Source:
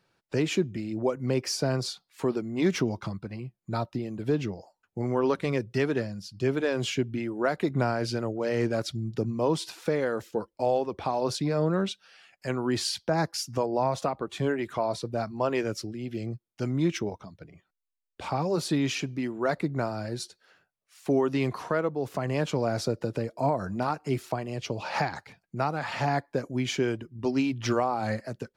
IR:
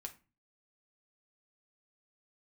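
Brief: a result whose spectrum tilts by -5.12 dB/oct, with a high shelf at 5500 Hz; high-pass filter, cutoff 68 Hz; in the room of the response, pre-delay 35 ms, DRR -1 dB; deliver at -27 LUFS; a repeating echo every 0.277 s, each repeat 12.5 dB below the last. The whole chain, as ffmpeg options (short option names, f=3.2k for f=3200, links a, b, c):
-filter_complex "[0:a]highpass=68,highshelf=f=5.5k:g=5,aecho=1:1:277|554|831:0.237|0.0569|0.0137,asplit=2[a][b];[1:a]atrim=start_sample=2205,adelay=35[c];[b][c]afir=irnorm=-1:irlink=0,volume=5dB[d];[a][d]amix=inputs=2:normalize=0,volume=-1.5dB"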